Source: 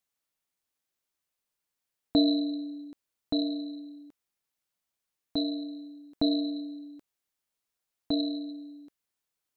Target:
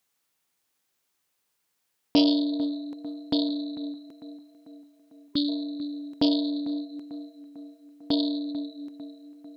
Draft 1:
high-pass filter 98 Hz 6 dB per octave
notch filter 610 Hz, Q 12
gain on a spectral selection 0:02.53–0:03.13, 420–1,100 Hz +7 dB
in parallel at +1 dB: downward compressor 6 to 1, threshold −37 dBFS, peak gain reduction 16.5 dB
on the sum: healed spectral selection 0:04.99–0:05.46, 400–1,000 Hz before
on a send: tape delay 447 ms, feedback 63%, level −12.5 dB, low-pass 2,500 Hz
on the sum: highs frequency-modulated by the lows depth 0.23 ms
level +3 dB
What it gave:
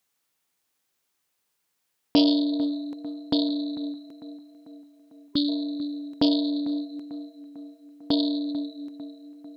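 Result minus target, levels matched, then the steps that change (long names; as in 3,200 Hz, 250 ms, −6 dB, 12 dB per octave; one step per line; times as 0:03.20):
downward compressor: peak gain reduction −9 dB
change: downward compressor 6 to 1, threshold −48 dBFS, peak gain reduction 25.5 dB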